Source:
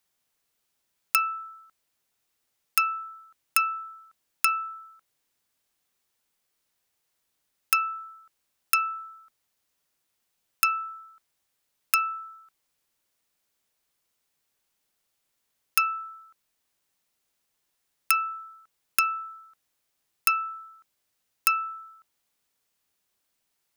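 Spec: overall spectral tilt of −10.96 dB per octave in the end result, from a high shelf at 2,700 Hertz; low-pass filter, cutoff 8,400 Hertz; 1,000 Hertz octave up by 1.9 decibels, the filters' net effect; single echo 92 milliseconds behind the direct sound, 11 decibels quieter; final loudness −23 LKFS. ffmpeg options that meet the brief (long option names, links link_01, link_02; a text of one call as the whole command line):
ffmpeg -i in.wav -af "lowpass=8400,equalizer=frequency=1000:width_type=o:gain=5.5,highshelf=frequency=2700:gain=-7.5,aecho=1:1:92:0.282,volume=4.5dB" out.wav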